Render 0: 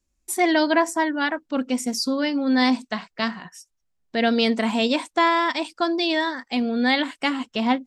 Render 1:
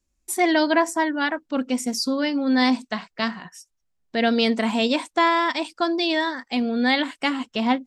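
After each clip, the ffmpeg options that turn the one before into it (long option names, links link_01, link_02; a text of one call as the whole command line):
ffmpeg -i in.wav -af anull out.wav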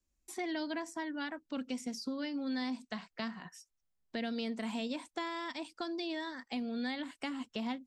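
ffmpeg -i in.wav -filter_complex "[0:a]acrossover=split=230|2100|5700[link_01][link_02][link_03][link_04];[link_01]acompressor=threshold=-33dB:ratio=4[link_05];[link_02]acompressor=threshold=-34dB:ratio=4[link_06];[link_03]acompressor=threshold=-40dB:ratio=4[link_07];[link_04]acompressor=threshold=-50dB:ratio=4[link_08];[link_05][link_06][link_07][link_08]amix=inputs=4:normalize=0,volume=-7.5dB" out.wav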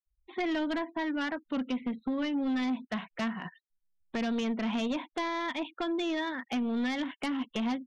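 ffmpeg -i in.wav -af "afftfilt=real='re*gte(hypot(re,im),0.00112)':imag='im*gte(hypot(re,im),0.00112)':win_size=1024:overlap=0.75,aresample=8000,aresample=44100,aeval=exprs='0.0668*(cos(1*acos(clip(val(0)/0.0668,-1,1)))-cos(1*PI/2))+0.0237*(cos(5*acos(clip(val(0)/0.0668,-1,1)))-cos(5*PI/2))':channel_layout=same" out.wav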